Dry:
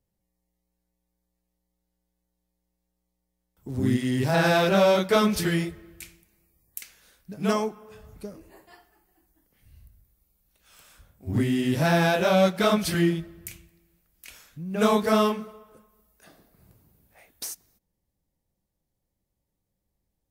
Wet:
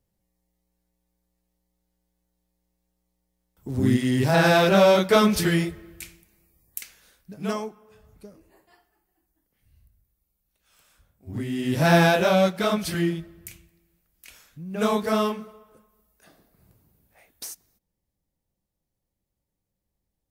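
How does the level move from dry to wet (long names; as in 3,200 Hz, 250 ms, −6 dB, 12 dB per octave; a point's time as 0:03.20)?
0:06.79 +3 dB
0:07.83 −7 dB
0:11.41 −7 dB
0:11.95 +5 dB
0:12.61 −2 dB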